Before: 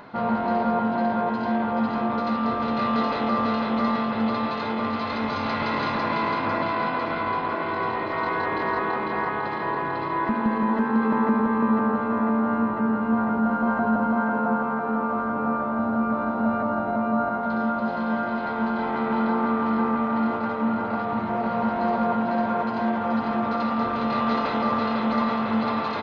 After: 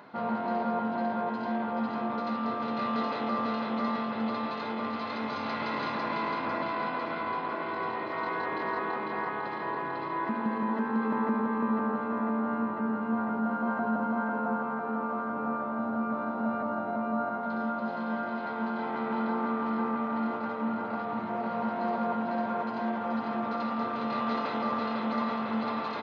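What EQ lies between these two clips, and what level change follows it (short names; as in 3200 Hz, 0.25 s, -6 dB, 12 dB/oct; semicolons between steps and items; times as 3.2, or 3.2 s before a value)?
HPF 150 Hz 12 dB/oct; -6.5 dB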